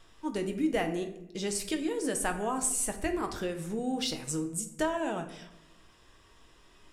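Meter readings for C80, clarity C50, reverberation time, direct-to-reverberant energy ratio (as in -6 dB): 13.0 dB, 10.0 dB, 0.85 s, 5.0 dB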